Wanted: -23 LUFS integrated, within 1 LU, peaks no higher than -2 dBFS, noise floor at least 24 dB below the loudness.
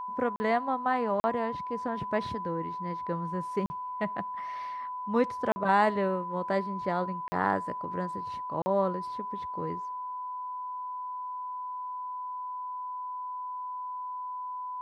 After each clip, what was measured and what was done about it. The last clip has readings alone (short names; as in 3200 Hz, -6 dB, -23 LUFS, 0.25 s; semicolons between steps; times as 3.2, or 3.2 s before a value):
dropouts 6; longest dropout 40 ms; steady tone 1000 Hz; tone level -34 dBFS; loudness -32.0 LUFS; peak -11.5 dBFS; loudness target -23.0 LUFS
-> interpolate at 0.36/1.2/3.66/5.52/7.28/8.62, 40 ms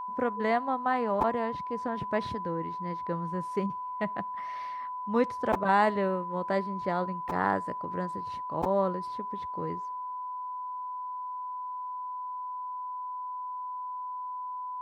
dropouts 0; steady tone 1000 Hz; tone level -34 dBFS
-> notch 1000 Hz, Q 30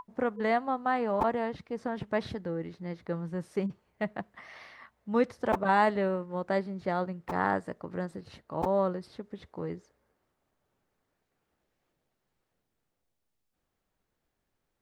steady tone none; loudness -31.5 LUFS; peak -11.5 dBFS; loudness target -23.0 LUFS
-> gain +8.5 dB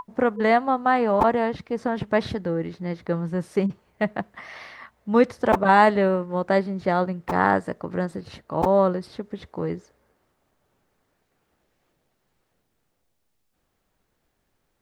loudness -23.0 LUFS; peak -3.0 dBFS; noise floor -73 dBFS